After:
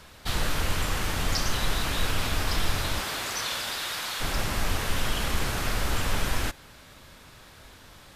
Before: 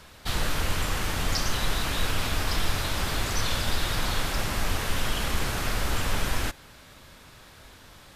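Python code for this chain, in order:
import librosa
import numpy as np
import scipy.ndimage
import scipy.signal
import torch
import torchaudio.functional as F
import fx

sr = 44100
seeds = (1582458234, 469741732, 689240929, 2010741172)

y = fx.highpass(x, sr, hz=fx.line((2.99, 410.0), (4.2, 1400.0)), slope=6, at=(2.99, 4.2), fade=0.02)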